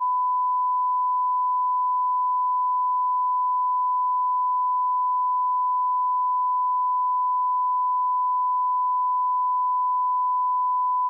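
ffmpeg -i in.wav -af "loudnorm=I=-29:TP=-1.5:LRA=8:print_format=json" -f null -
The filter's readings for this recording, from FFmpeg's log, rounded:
"input_i" : "-22.6",
"input_tp" : "-19.6",
"input_lra" : "0.0",
"input_thresh" : "-32.6",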